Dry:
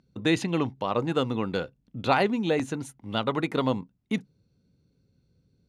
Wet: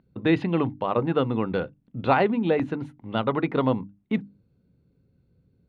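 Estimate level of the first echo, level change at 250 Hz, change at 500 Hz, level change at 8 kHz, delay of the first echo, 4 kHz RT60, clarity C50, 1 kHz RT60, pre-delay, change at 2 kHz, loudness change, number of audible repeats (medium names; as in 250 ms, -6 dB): no echo, +3.0 dB, +3.0 dB, under -20 dB, no echo, no reverb, no reverb, no reverb, no reverb, 0.0 dB, +2.5 dB, no echo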